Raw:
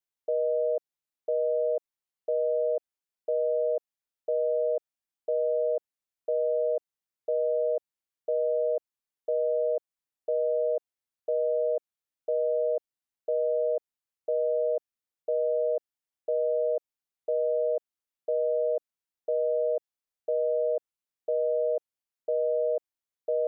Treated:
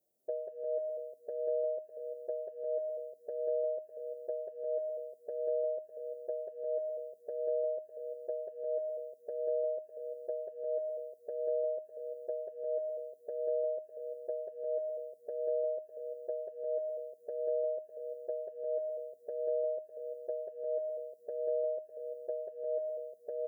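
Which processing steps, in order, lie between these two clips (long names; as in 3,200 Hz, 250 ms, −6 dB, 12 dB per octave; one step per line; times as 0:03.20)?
spike at every zero crossing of −34 dBFS
elliptic low-pass filter 640 Hz, stop band 40 dB
downward compressor, threshold −32 dBFS, peak gain reduction 7.5 dB
bouncing-ball delay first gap 190 ms, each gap 0.85×, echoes 5
barber-pole flanger 6.6 ms +1.5 Hz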